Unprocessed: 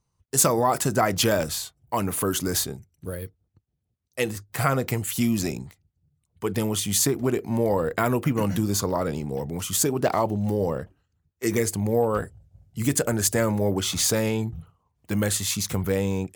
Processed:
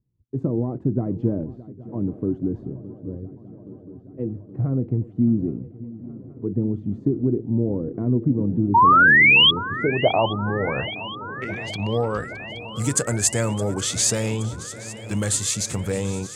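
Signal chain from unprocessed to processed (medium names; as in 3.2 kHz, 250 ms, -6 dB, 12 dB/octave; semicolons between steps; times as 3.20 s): peaking EQ 120 Hz +7 dB 0.33 oct; 10.73–11.80 s: compressor with a negative ratio -30 dBFS, ratio -1; low-pass sweep 300 Hz -> 8.1 kHz, 9.29–12.50 s; 8.74–9.51 s: painted sound rise 890–3400 Hz -11 dBFS; on a send: shuffle delay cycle 822 ms, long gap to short 3:1, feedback 72%, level -18 dB; on the sum: trim -2 dB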